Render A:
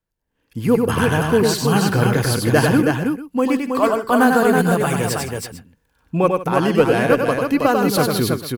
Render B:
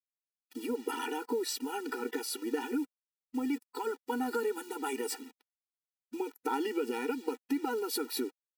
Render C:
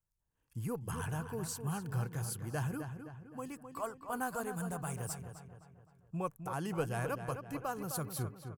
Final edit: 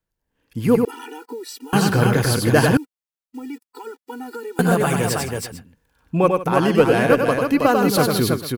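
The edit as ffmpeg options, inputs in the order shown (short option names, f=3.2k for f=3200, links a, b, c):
-filter_complex "[1:a]asplit=2[a][b];[0:a]asplit=3[c][d][e];[c]atrim=end=0.852[f];[a]atrim=start=0.848:end=1.732[g];[d]atrim=start=1.728:end=2.772[h];[b]atrim=start=2.768:end=4.592[i];[e]atrim=start=4.588[j];[f][g]acrossfade=d=0.004:c1=hsin:c2=hsin[k];[k][h]acrossfade=d=0.004:c1=hsin:c2=hsin[l];[l][i]acrossfade=d=0.004:c1=hsin:c2=hsin[m];[m][j]acrossfade=d=0.004:c1=hsin:c2=hsin"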